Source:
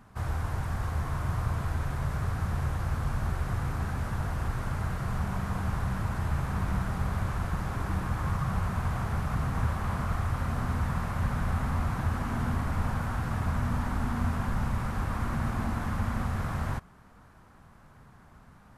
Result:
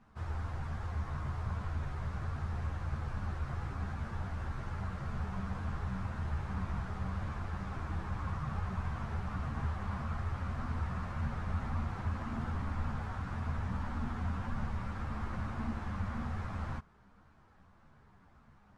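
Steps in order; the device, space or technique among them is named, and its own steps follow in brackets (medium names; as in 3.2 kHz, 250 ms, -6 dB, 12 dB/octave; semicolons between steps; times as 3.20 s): string-machine ensemble chorus (three-phase chorus; low-pass 5.7 kHz 12 dB/octave); trim -4.5 dB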